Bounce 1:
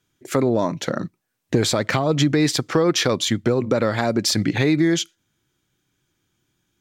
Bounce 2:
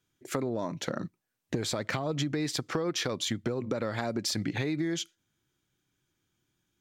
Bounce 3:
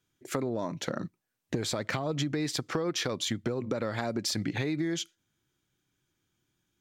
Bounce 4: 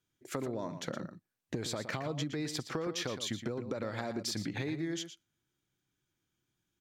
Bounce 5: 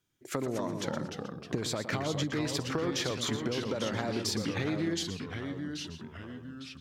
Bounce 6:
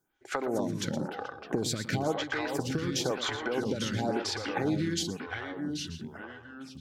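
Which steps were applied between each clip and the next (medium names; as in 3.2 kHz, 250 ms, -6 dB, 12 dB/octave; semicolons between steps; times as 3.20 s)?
compression, threshold -20 dBFS, peak gain reduction 7.5 dB; trim -7 dB
no audible change
echo from a far wall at 20 m, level -10 dB; trim -5.5 dB
ever faster or slower copies 199 ms, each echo -2 st, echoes 3, each echo -6 dB; trim +3.5 dB
small resonant body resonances 810/1500 Hz, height 11 dB, ringing for 45 ms; lamp-driven phase shifter 0.98 Hz; trim +4.5 dB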